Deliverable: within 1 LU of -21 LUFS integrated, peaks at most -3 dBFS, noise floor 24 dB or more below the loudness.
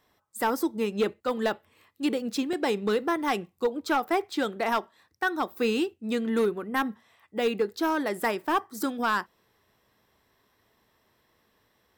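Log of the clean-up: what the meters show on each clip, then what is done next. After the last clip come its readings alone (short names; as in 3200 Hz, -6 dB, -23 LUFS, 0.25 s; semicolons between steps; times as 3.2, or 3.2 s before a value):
clipped 0.6%; flat tops at -18.0 dBFS; dropouts 1; longest dropout 3.7 ms; loudness -28.5 LUFS; peak -18.0 dBFS; loudness target -21.0 LUFS
-> clip repair -18 dBFS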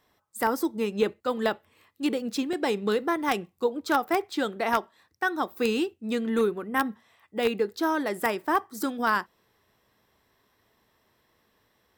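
clipped 0.0%; dropouts 1; longest dropout 3.7 ms
-> interpolate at 2.53, 3.7 ms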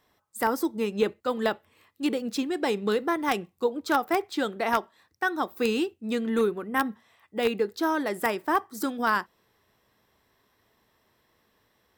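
dropouts 0; loudness -28.0 LUFS; peak -9.0 dBFS; loudness target -21.0 LUFS
-> gain +7 dB; limiter -3 dBFS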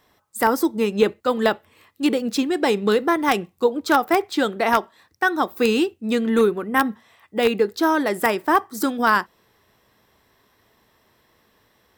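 loudness -21.0 LUFS; peak -3.0 dBFS; noise floor -63 dBFS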